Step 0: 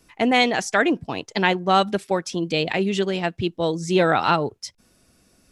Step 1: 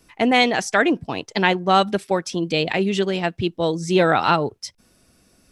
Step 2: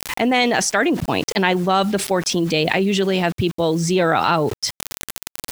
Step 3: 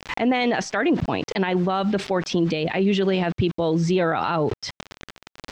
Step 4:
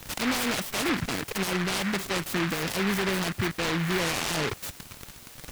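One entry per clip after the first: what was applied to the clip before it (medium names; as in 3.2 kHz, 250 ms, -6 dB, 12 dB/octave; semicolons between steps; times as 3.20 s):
band-stop 6.9 kHz, Q 20; trim +1.5 dB
word length cut 8-bit, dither none; level flattener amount 70%; trim -2.5 dB
peak limiter -11.5 dBFS, peak gain reduction 9.5 dB; distance through air 170 m
jump at every zero crossing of -27 dBFS; delay time shaken by noise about 1.6 kHz, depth 0.34 ms; trim -8 dB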